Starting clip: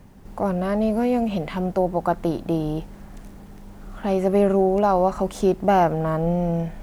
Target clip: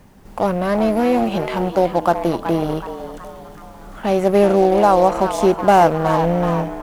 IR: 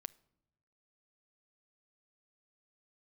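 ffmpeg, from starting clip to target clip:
-filter_complex "[0:a]lowshelf=f=320:g=-6,asplit=6[s0][s1][s2][s3][s4][s5];[s1]adelay=374,afreqshift=130,volume=0.316[s6];[s2]adelay=748,afreqshift=260,volume=0.155[s7];[s3]adelay=1122,afreqshift=390,volume=0.0759[s8];[s4]adelay=1496,afreqshift=520,volume=0.0372[s9];[s5]adelay=1870,afreqshift=650,volume=0.0182[s10];[s0][s6][s7][s8][s9][s10]amix=inputs=6:normalize=0,asplit=2[s11][s12];[s12]acrusher=bits=3:mix=0:aa=0.5,volume=0.316[s13];[s11][s13]amix=inputs=2:normalize=0,volume=1.68"

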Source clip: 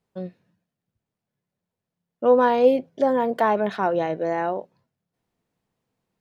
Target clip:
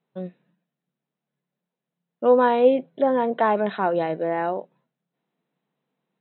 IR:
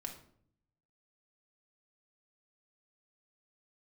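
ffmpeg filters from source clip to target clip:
-af "afftfilt=real='re*between(b*sr/4096,130,4100)':imag='im*between(b*sr/4096,130,4100)':win_size=4096:overlap=0.75"

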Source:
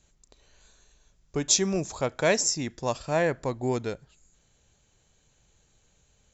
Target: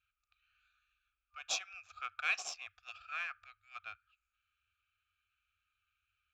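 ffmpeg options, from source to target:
-filter_complex "[0:a]afftfilt=real='re*(1-between(b*sr/4096,100,1200))':imag='im*(1-between(b*sr/4096,100,1200))':win_size=4096:overlap=0.75,adynamicsmooth=sensitivity=5.5:basefreq=2500,asplit=3[s0][s1][s2];[s0]bandpass=f=730:t=q:w=8,volume=1[s3];[s1]bandpass=f=1090:t=q:w=8,volume=0.501[s4];[s2]bandpass=f=2440:t=q:w=8,volume=0.355[s5];[s3][s4][s5]amix=inputs=3:normalize=0,volume=3.76"

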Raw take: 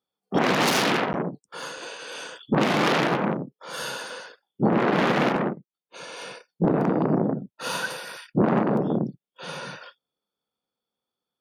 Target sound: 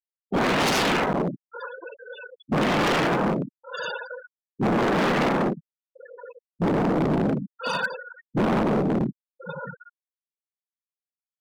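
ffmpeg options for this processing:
-af "afftfilt=real='re*gte(hypot(re,im),0.0501)':imag='im*gte(hypot(re,im),0.0501)':win_size=1024:overlap=0.75,asoftclip=type=hard:threshold=0.0631,volume=1.68"

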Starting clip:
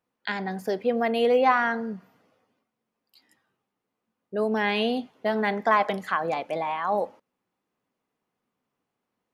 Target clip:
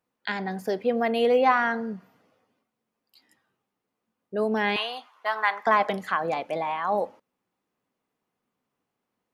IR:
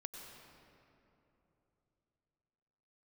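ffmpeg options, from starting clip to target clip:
-filter_complex "[0:a]asettb=1/sr,asplit=3[s0][s1][s2];[s0]atrim=end=4.764[s3];[s1]atrim=start=4.76:end=5.67,asetpts=PTS-STARTPTS,afade=t=in:d=0.004:c=qsin,afade=t=out:st=0.906:d=0.004:c=qsin,highpass=f=1100:t=q:w=4[s4];[s2]atrim=start=5.666[s5];[s3][s4]acrossfade=d=0.004:c1=hsin:c2=qsin[s6];[s6][s5]acrossfade=d=0.004:c1=qsin:c2=hsin"

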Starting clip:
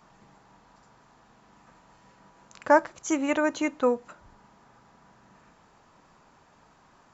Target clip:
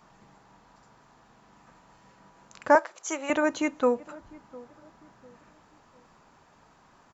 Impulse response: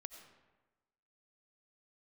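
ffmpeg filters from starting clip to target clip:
-filter_complex "[0:a]asettb=1/sr,asplit=3[s0][s1][s2];[s0]atrim=end=2.754[s3];[s1]atrim=start=2.75:end=3.3,asetpts=PTS-STARTPTS,afade=t=in:d=0.004:c=qsin,afade=t=out:st=0.546:d=0.004:c=qsin,highpass=f=410:w=0.5412,highpass=f=410:w=1.3066[s4];[s2]atrim=start=3.296[s5];[s3][s4]acrossfade=d=0.004:c1=hsin:c2=qsin[s6];[s6][s5]acrossfade=d=0.004:c1=qsin:c2=hsin,asplit=2[s7][s8];[s8]adelay=702,lowpass=f=800:p=1,volume=0.1,asplit=2[s9][s10];[s10]adelay=702,lowpass=f=800:p=1,volume=0.41,asplit=2[s11][s12];[s12]adelay=702,lowpass=f=800:p=1,volume=0.41[s13];[s7][s9][s11][s13]amix=inputs=4:normalize=0"

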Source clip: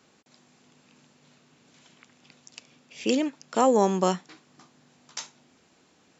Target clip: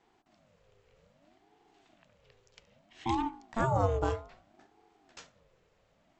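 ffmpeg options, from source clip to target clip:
-af "bass=f=250:g=8,treble=f=4000:g=-10,bandreject=f=52.64:t=h:w=4,bandreject=f=105.28:t=h:w=4,bandreject=f=157.92:t=h:w=4,bandreject=f=210.56:t=h:w=4,bandreject=f=263.2:t=h:w=4,bandreject=f=315.84:t=h:w=4,bandreject=f=368.48:t=h:w=4,bandreject=f=421.12:t=h:w=4,bandreject=f=473.76:t=h:w=4,bandreject=f=526.4:t=h:w=4,bandreject=f=579.04:t=h:w=4,bandreject=f=631.68:t=h:w=4,bandreject=f=684.32:t=h:w=4,bandreject=f=736.96:t=h:w=4,bandreject=f=789.6:t=h:w=4,bandreject=f=842.24:t=h:w=4,bandreject=f=894.88:t=h:w=4,bandreject=f=947.52:t=h:w=4,bandreject=f=1000.16:t=h:w=4,bandreject=f=1052.8:t=h:w=4,bandreject=f=1105.44:t=h:w=4,aeval=exprs='val(0)*sin(2*PI*420*n/s+420*0.4/0.62*sin(2*PI*0.62*n/s))':c=same,volume=0.531"

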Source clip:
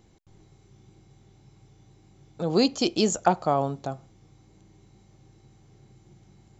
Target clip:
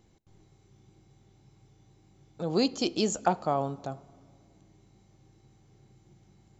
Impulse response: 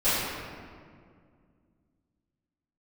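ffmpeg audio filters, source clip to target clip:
-filter_complex "[0:a]asplit=2[s0][s1];[1:a]atrim=start_sample=2205[s2];[s1][s2]afir=irnorm=-1:irlink=0,volume=0.0158[s3];[s0][s3]amix=inputs=2:normalize=0,volume=0.596"

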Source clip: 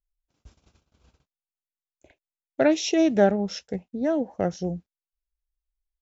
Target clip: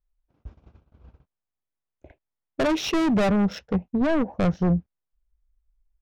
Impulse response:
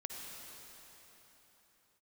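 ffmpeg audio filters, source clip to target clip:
-af "volume=21.1,asoftclip=hard,volume=0.0473,asubboost=boost=2:cutoff=200,adynamicsmooth=sensitivity=3.5:basefreq=1600,volume=2.51"

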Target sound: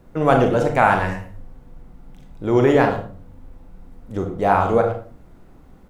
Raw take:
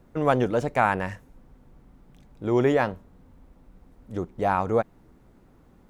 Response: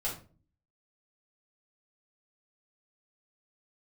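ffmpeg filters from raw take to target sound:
-filter_complex "[0:a]asplit=2[s0][s1];[s1]adelay=110,highpass=300,lowpass=3400,asoftclip=type=hard:threshold=0.158,volume=0.251[s2];[s0][s2]amix=inputs=2:normalize=0,asplit=2[s3][s4];[1:a]atrim=start_sample=2205,adelay=31[s5];[s4][s5]afir=irnorm=-1:irlink=0,volume=0.422[s6];[s3][s6]amix=inputs=2:normalize=0,volume=1.68"

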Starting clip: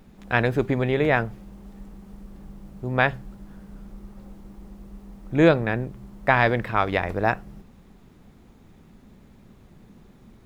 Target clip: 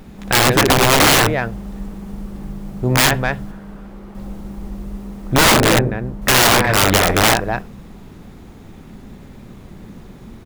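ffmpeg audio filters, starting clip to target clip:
-filter_complex "[0:a]asettb=1/sr,asplit=3[s0][s1][s2];[s0]atrim=end=3.514[s3];[s1]atrim=start=3.51:end=4.15,asetpts=PTS-STARTPTS,afade=t=in:d=0.004:c=qsin,afade=t=out:st=0.636:d=0.004:c=qsin,bass=f=250:g=-9,treble=f=4000:g=-9[s4];[s2]atrim=start=4.146[s5];[s3][s4]acrossfade=d=0.004:c1=hsin:c2=qsin[s6];[s6][s5]acrossfade=d=0.004:c1=qsin:c2=hsin,acontrast=73,asettb=1/sr,asplit=3[s7][s8][s9];[s7]atrim=end=5.444[s10];[s8]atrim=start=5.44:end=6.22,asetpts=PTS-STARTPTS,afade=t=in:d=0.004:c=qsin,afade=t=out:st=0.776:d=0.004:c=qsin,highshelf=f=2100:g=-9[s11];[s9]atrim=start=6.216[s12];[s10][s11]acrossfade=d=0.004:c1=hsin:c2=qsin[s13];[s13][s12]acrossfade=d=0.004:c1=qsin:c2=hsin,aecho=1:1:61|249:0.398|0.282,aeval=exprs='(mod(3.55*val(0)+1,2)-1)/3.55':c=same,volume=1.78"

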